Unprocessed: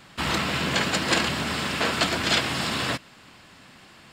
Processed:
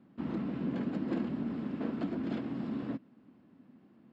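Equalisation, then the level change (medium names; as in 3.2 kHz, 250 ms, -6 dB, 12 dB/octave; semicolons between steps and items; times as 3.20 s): band-pass filter 250 Hz, Q 3; distance through air 54 m; +1.0 dB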